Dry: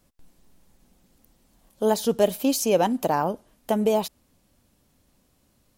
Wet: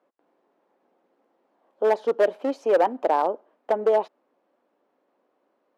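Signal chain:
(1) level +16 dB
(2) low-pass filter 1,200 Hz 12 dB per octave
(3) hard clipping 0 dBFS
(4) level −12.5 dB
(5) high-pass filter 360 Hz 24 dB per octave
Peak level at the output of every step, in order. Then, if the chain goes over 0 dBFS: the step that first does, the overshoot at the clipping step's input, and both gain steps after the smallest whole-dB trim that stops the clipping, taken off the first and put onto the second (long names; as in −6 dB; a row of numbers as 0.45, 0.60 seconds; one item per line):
+9.0, +8.0, 0.0, −12.5, −9.5 dBFS
step 1, 8.0 dB
step 1 +8 dB, step 4 −4.5 dB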